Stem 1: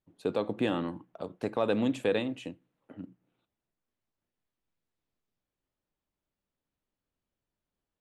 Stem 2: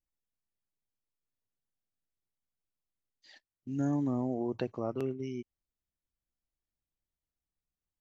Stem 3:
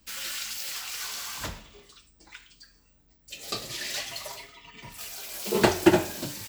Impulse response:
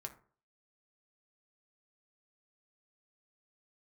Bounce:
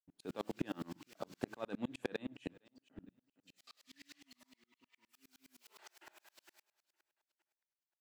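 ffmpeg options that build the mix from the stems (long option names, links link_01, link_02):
-filter_complex "[0:a]agate=range=-33dB:threshold=-59dB:ratio=3:detection=peak,equalizer=frequency=100:width_type=o:width=0.33:gain=-9,equalizer=frequency=500:width_type=o:width=0.33:gain=-6,equalizer=frequency=1600:width_type=o:width=0.33:gain=4,acompressor=threshold=-35dB:ratio=2.5,volume=3dB,asplit=2[link_01][link_02];[link_02]volume=-23.5dB[link_03];[1:a]acompressor=threshold=-37dB:ratio=6,asplit=3[link_04][link_05][link_06];[link_04]bandpass=frequency=270:width_type=q:width=8,volume=0dB[link_07];[link_05]bandpass=frequency=2290:width_type=q:width=8,volume=-6dB[link_08];[link_06]bandpass=frequency=3010:width_type=q:width=8,volume=-9dB[link_09];[link_07][link_08][link_09]amix=inputs=3:normalize=0,adelay=200,volume=-15dB[link_10];[2:a]highpass=1400,highshelf=frequency=2700:gain=-10,adelay=150,volume=-12.5dB,asplit=2[link_11][link_12];[link_12]volume=-17dB[link_13];[link_03][link_13]amix=inputs=2:normalize=0,aecho=0:1:460|920|1380|1840|2300:1|0.33|0.109|0.0359|0.0119[link_14];[link_01][link_10][link_11][link_14]amix=inputs=4:normalize=0,asoftclip=type=hard:threshold=-22dB,aeval=exprs='val(0)*pow(10,-36*if(lt(mod(-9.7*n/s,1),2*abs(-9.7)/1000),1-mod(-9.7*n/s,1)/(2*abs(-9.7)/1000),(mod(-9.7*n/s,1)-2*abs(-9.7)/1000)/(1-2*abs(-9.7)/1000))/20)':channel_layout=same"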